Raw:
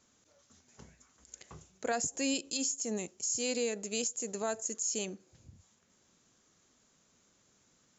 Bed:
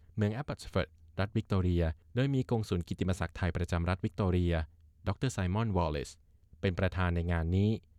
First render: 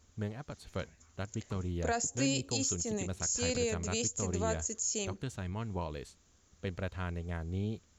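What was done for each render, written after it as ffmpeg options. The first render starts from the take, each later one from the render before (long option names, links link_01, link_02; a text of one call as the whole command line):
ffmpeg -i in.wav -i bed.wav -filter_complex "[1:a]volume=-7dB[link_01];[0:a][link_01]amix=inputs=2:normalize=0" out.wav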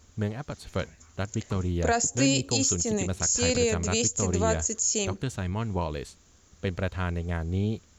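ffmpeg -i in.wav -af "volume=8dB" out.wav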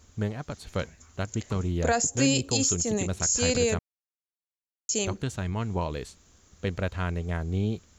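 ffmpeg -i in.wav -filter_complex "[0:a]asplit=3[link_01][link_02][link_03];[link_01]atrim=end=3.79,asetpts=PTS-STARTPTS,afade=type=out:start_time=3.786:duration=0.004:curve=hsin[link_04];[link_02]atrim=start=3.79:end=4.89,asetpts=PTS-STARTPTS,volume=0[link_05];[link_03]atrim=start=4.89,asetpts=PTS-STARTPTS,afade=type=in:duration=0.004:curve=hsin[link_06];[link_04][link_05][link_06]concat=n=3:v=0:a=1" out.wav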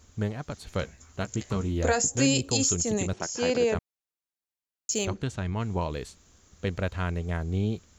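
ffmpeg -i in.wav -filter_complex "[0:a]asettb=1/sr,asplit=3[link_01][link_02][link_03];[link_01]atrim=end=0.804[link_04];[link_02]atrim=start=0.8:end=2.14,asetpts=PTS-STARTPTS,afade=type=in:duration=0.004:curve=qsin,afade=type=out:start_time=1.336:duration=0.004:curve=qsin,asplit=2[link_05][link_06];[link_06]adelay=15,volume=-8dB[link_07];[link_05][link_07]amix=inputs=2:normalize=0,atrim=end_sample=59094[link_08];[link_03]atrim=start=2.136[link_09];[link_04][link_08]acrossfade=duration=0.004:curve1=hsin:curve2=qsin[link_10];[link_10][link_09]acrossfade=duration=0.004:curve1=qsin:curve2=hsin,asettb=1/sr,asplit=3[link_11][link_12][link_13];[link_11]atrim=end=3.134[link_14];[link_12]atrim=start=3.13:end=3.75,asetpts=PTS-STARTPTS,afade=type=in:duration=0.004:curve=qsin,afade=type=out:start_time=0.616:duration=0.004:curve=qsin,highpass=200,equalizer=frequency=350:width_type=q:width=4:gain=5,equalizer=frequency=600:width_type=q:width=4:gain=3,equalizer=frequency=860:width_type=q:width=4:gain=5,equalizer=frequency=2400:width_type=q:width=4:gain=-3,equalizer=frequency=4000:width_type=q:width=4:gain=-9,lowpass=frequency=5200:width=0.5412,lowpass=frequency=5200:width=1.3066[link_15];[link_13]atrim=start=3.746[link_16];[link_14][link_15]acrossfade=duration=0.004:curve1=hsin:curve2=qsin[link_17];[link_17][link_16]acrossfade=duration=0.004:curve1=qsin:curve2=hsin,asettb=1/sr,asplit=3[link_18][link_19][link_20];[link_18]atrim=end=4.914[link_21];[link_19]atrim=start=4.91:end=5.6,asetpts=PTS-STARTPTS,afade=type=in:duration=0.004:curve=qsin,afade=type=out:start_time=0.686:duration=0.004:curve=qsin,adynamicsmooth=sensitivity=3.5:basefreq=7600[link_22];[link_20]atrim=start=5.596[link_23];[link_21][link_22]acrossfade=duration=0.004:curve1=hsin:curve2=qsin[link_24];[link_24][link_23]acrossfade=duration=0.004:curve1=qsin:curve2=hsin" out.wav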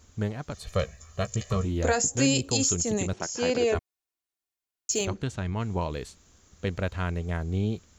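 ffmpeg -i in.wav -filter_complex "[0:a]asettb=1/sr,asplit=3[link_01][link_02][link_03];[link_01]atrim=end=0.544[link_04];[link_02]atrim=start=0.54:end=1.65,asetpts=PTS-STARTPTS,afade=type=in:duration=0.004:curve=qsin,afade=type=out:start_time=1.106:duration=0.004:curve=qsin,aecho=1:1:1.7:0.83,atrim=end_sample=48951[link_05];[link_03]atrim=start=1.646[link_06];[link_04][link_05]acrossfade=duration=0.004:curve1=hsin:curve2=qsin[link_07];[link_07][link_06]acrossfade=duration=0.004:curve1=qsin:curve2=hsin,asettb=1/sr,asplit=3[link_08][link_09][link_10];[link_08]atrim=end=3.584[link_11];[link_09]atrim=start=3.58:end=5.01,asetpts=PTS-STARTPTS,afade=type=in:duration=0.004:curve=qsin,afade=type=out:start_time=1.426:duration=0.004:curve=qsin,aecho=1:1:2.8:0.65,atrim=end_sample=63063[link_12];[link_10]atrim=start=5.006[link_13];[link_11][link_12]acrossfade=duration=0.004:curve1=hsin:curve2=qsin[link_14];[link_14][link_13]acrossfade=duration=0.004:curve1=qsin:curve2=hsin" out.wav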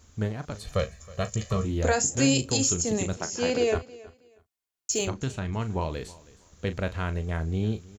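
ffmpeg -i in.wav -filter_complex "[0:a]asplit=2[link_01][link_02];[link_02]adelay=37,volume=-12dB[link_03];[link_01][link_03]amix=inputs=2:normalize=0,aecho=1:1:319|638:0.0891|0.0196" out.wav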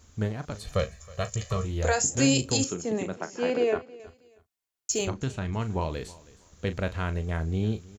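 ffmpeg -i in.wav -filter_complex "[0:a]asettb=1/sr,asplit=3[link_01][link_02][link_03];[link_01]atrim=end=0.994[link_04];[link_02]atrim=start=0.99:end=2.04,asetpts=PTS-STARTPTS,afade=type=in:duration=0.004:curve=qsin,afade=type=out:start_time=1.046:duration=0.004:curve=qsin,equalizer=frequency=250:width_type=o:width=0.77:gain=-11[link_05];[link_03]atrim=start=2.036[link_06];[link_04][link_05]acrossfade=duration=0.004:curve1=hsin:curve2=qsin[link_07];[link_07][link_06]acrossfade=duration=0.004:curve1=qsin:curve2=hsin,asettb=1/sr,asplit=3[link_08][link_09][link_10];[link_08]atrim=end=2.644[link_11];[link_09]atrim=start=2.64:end=4,asetpts=PTS-STARTPTS,afade=type=in:duration=0.004:curve=qsin,afade=type=out:start_time=1.356:duration=0.004:curve=qsin,acrossover=split=160 2800:gain=0.0891 1 0.2[link_12][link_13][link_14];[link_12][link_13][link_14]amix=inputs=3:normalize=0[link_15];[link_10]atrim=start=3.996[link_16];[link_11][link_15]acrossfade=duration=0.004:curve1=hsin:curve2=qsin[link_17];[link_17][link_16]acrossfade=duration=0.004:curve1=qsin:curve2=hsin,asettb=1/sr,asplit=3[link_18][link_19][link_20];[link_18]atrim=end=4.924[link_21];[link_19]atrim=start=4.92:end=5.41,asetpts=PTS-STARTPTS,afade=type=in:duration=0.004:curve=qsin,afade=type=out:start_time=0.486:duration=0.004:curve=qsin,highshelf=frequency=4300:gain=-4[link_22];[link_20]atrim=start=5.406[link_23];[link_21][link_22]acrossfade=duration=0.004:curve1=hsin:curve2=qsin[link_24];[link_24][link_23]acrossfade=duration=0.004:curve1=qsin:curve2=hsin" out.wav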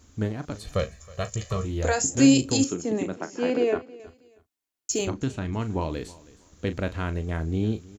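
ffmpeg -i in.wav -af "equalizer=frequency=290:width_type=o:width=0.51:gain=8.5" out.wav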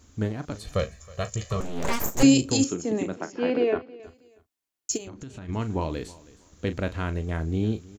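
ffmpeg -i in.wav -filter_complex "[0:a]asettb=1/sr,asplit=3[link_01][link_02][link_03];[link_01]atrim=end=1.604[link_04];[link_02]atrim=start=1.6:end=2.23,asetpts=PTS-STARTPTS,afade=type=in:duration=0.004:curve=qsin,afade=type=out:start_time=0.626:duration=0.004:curve=qsin,aeval=exprs='abs(val(0))':channel_layout=same[link_05];[link_03]atrim=start=2.226[link_06];[link_04][link_05]acrossfade=duration=0.004:curve1=hsin:curve2=qsin[link_07];[link_07][link_06]acrossfade=duration=0.004:curve1=qsin:curve2=hsin,asettb=1/sr,asplit=3[link_08][link_09][link_10];[link_08]atrim=end=3.324[link_11];[link_09]atrim=start=3.32:end=4.03,asetpts=PTS-STARTPTS,afade=type=in:duration=0.004:curve=qsin,afade=type=out:start_time=0.706:duration=0.004:curve=qsin,lowpass=frequency=4400:width=0.5412,lowpass=frequency=4400:width=1.3066[link_12];[link_10]atrim=start=4.026[link_13];[link_11][link_12]acrossfade=duration=0.004:curve1=hsin:curve2=qsin[link_14];[link_14][link_13]acrossfade=duration=0.004:curve1=qsin:curve2=hsin,asplit=3[link_15][link_16][link_17];[link_15]afade=type=out:start_time=4.96:duration=0.02[link_18];[link_16]acompressor=threshold=-35dB:ratio=16:attack=3.2:release=140:knee=1:detection=peak,afade=type=in:start_time=4.96:duration=0.02,afade=type=out:start_time=5.48:duration=0.02[link_19];[link_17]afade=type=in:start_time=5.48:duration=0.02[link_20];[link_18][link_19][link_20]amix=inputs=3:normalize=0" out.wav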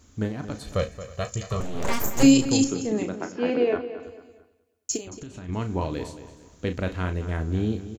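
ffmpeg -i in.wav -filter_complex "[0:a]asplit=2[link_01][link_02];[link_02]adelay=33,volume=-11.5dB[link_03];[link_01][link_03]amix=inputs=2:normalize=0,asplit=2[link_04][link_05];[link_05]adelay=224,lowpass=frequency=4800:poles=1,volume=-13dB,asplit=2[link_06][link_07];[link_07]adelay=224,lowpass=frequency=4800:poles=1,volume=0.35,asplit=2[link_08][link_09];[link_09]adelay=224,lowpass=frequency=4800:poles=1,volume=0.35[link_10];[link_04][link_06][link_08][link_10]amix=inputs=4:normalize=0" out.wav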